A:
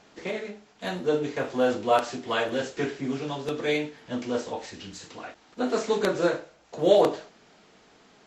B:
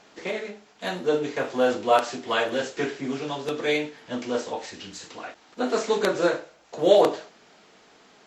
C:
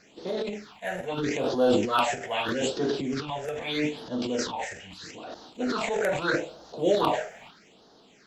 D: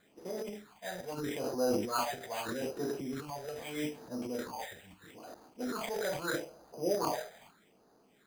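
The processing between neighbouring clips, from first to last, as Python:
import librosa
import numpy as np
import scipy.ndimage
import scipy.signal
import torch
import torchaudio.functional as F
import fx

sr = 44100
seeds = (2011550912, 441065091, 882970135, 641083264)

y1 = fx.low_shelf(x, sr, hz=190.0, db=-9.0)
y1 = F.gain(torch.from_numpy(y1), 3.0).numpy()
y2 = fx.transient(y1, sr, attack_db=-2, sustain_db=11)
y2 = fx.phaser_stages(y2, sr, stages=6, low_hz=280.0, high_hz=2300.0, hz=0.79, feedback_pct=25)
y3 = np.repeat(scipy.signal.resample_poly(y2, 1, 8), 8)[:len(y2)]
y3 = F.gain(torch.from_numpy(y3), -8.5).numpy()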